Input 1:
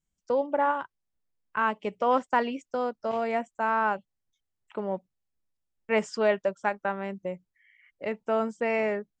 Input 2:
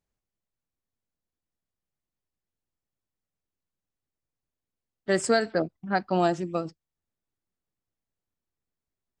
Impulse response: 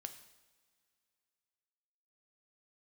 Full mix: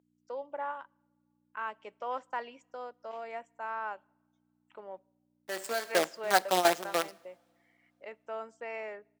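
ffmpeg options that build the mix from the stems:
-filter_complex "[0:a]aeval=exprs='val(0)+0.00794*(sin(2*PI*60*n/s)+sin(2*PI*2*60*n/s)/2+sin(2*PI*3*60*n/s)/3+sin(2*PI*4*60*n/s)/4+sin(2*PI*5*60*n/s)/5)':channel_layout=same,volume=-11.5dB,asplit=3[link_01][link_02][link_03];[link_02]volume=-15dB[link_04];[1:a]acrusher=bits=5:dc=4:mix=0:aa=0.000001,adelay=400,volume=0dB,asplit=2[link_05][link_06];[link_06]volume=-7dB[link_07];[link_03]apad=whole_len=423370[link_08];[link_05][link_08]sidechaingate=range=-23dB:threshold=-47dB:ratio=16:detection=peak[link_09];[2:a]atrim=start_sample=2205[link_10];[link_04][link_07]amix=inputs=2:normalize=0[link_11];[link_11][link_10]afir=irnorm=-1:irlink=0[link_12];[link_01][link_09][link_12]amix=inputs=3:normalize=0,highpass=500"

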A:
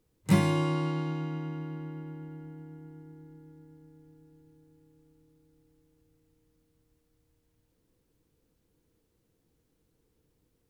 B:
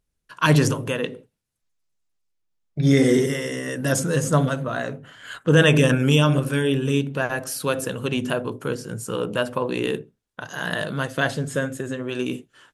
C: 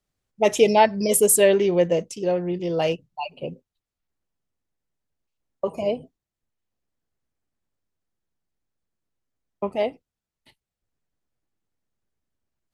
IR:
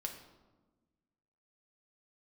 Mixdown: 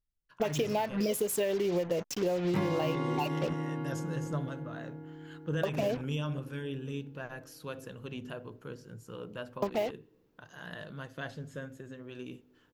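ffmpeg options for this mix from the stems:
-filter_complex "[0:a]equalizer=frequency=750:width=0.3:gain=9,adelay=2250,volume=-4dB[link_01];[1:a]lowshelf=frequency=81:gain=11.5,volume=-19dB,asplit=2[link_02][link_03];[link_03]volume=-14.5dB[link_04];[2:a]acompressor=threshold=-22dB:ratio=6,acrusher=bits=5:mix=0:aa=0.5,volume=1.5dB[link_05];[3:a]atrim=start_sample=2205[link_06];[link_04][link_06]afir=irnorm=-1:irlink=0[link_07];[link_01][link_02][link_05][link_07]amix=inputs=4:normalize=0,equalizer=frequency=9100:width_type=o:width=0.45:gain=-12.5,acompressor=threshold=-27dB:ratio=6"

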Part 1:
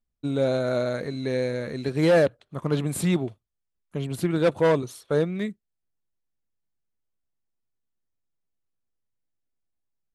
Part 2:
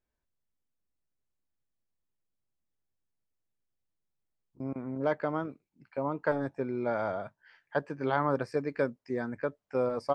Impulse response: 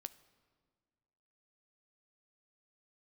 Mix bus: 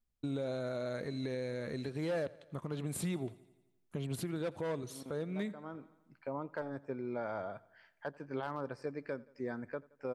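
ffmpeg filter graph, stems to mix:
-filter_complex "[0:a]acompressor=threshold=-23dB:ratio=6,volume=-2dB,asplit=3[link_01][link_02][link_03];[link_02]volume=-22.5dB[link_04];[1:a]asoftclip=type=hard:threshold=-16.5dB,adelay=300,volume=-4dB,asplit=2[link_05][link_06];[link_06]volume=-23.5dB[link_07];[link_03]apad=whole_len=460493[link_08];[link_05][link_08]sidechaincompress=threshold=-42dB:ratio=8:attack=23:release=390[link_09];[link_04][link_07]amix=inputs=2:normalize=0,aecho=0:1:86|172|258|344|430|516|602|688:1|0.52|0.27|0.141|0.0731|0.038|0.0198|0.0103[link_10];[link_01][link_09][link_10]amix=inputs=3:normalize=0,alimiter=level_in=4dB:limit=-24dB:level=0:latency=1:release=497,volume=-4dB"

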